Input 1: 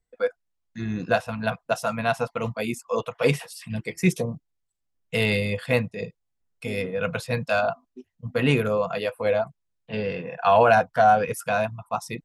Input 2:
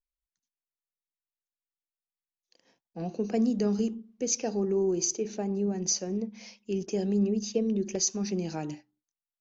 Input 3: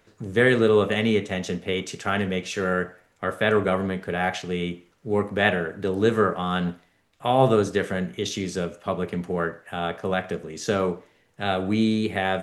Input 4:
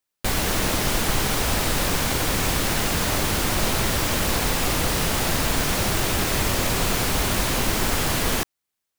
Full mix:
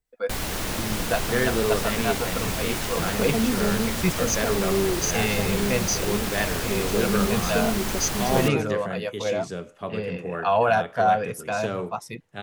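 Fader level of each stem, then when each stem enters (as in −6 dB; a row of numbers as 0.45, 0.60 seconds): −3.5, +1.5, −6.0, −6.0 decibels; 0.00, 0.00, 0.95, 0.05 seconds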